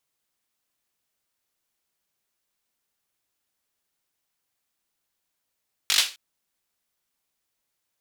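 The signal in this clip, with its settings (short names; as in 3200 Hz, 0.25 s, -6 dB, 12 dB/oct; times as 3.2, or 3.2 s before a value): hand clap length 0.26 s, bursts 5, apart 20 ms, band 3500 Hz, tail 0.30 s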